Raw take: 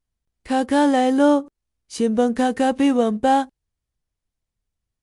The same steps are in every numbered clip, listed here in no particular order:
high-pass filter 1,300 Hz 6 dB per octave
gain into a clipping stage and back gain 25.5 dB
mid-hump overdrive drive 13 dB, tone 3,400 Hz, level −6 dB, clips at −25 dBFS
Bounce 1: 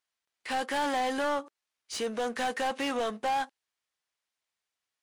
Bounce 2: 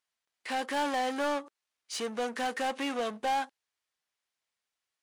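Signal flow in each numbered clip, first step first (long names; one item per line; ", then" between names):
high-pass filter, then gain into a clipping stage and back, then mid-hump overdrive
mid-hump overdrive, then high-pass filter, then gain into a clipping stage and back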